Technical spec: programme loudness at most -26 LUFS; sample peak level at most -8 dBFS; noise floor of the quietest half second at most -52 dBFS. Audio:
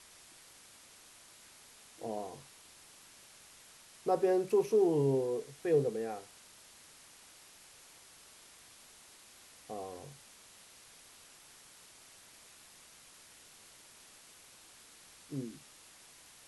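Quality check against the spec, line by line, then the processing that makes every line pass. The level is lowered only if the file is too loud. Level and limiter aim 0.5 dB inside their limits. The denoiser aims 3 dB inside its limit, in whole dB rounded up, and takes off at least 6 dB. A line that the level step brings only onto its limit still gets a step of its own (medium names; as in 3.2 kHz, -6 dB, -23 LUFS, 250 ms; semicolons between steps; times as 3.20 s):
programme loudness -33.5 LUFS: pass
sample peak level -19.0 dBFS: pass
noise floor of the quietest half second -58 dBFS: pass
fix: none needed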